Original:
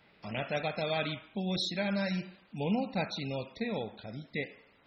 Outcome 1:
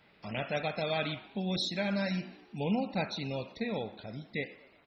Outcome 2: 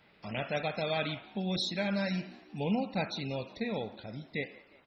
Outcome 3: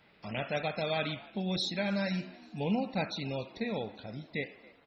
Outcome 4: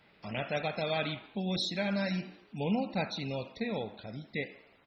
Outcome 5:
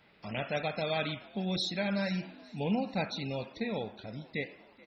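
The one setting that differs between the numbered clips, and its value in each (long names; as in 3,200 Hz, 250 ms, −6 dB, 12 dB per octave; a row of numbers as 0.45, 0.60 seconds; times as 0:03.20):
echo with shifted repeats, delay time: 121, 179, 279, 82, 430 milliseconds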